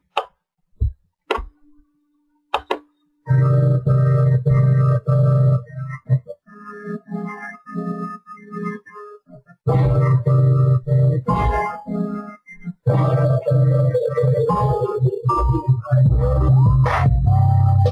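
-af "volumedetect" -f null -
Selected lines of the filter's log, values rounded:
mean_volume: -17.9 dB
max_volume: -1.6 dB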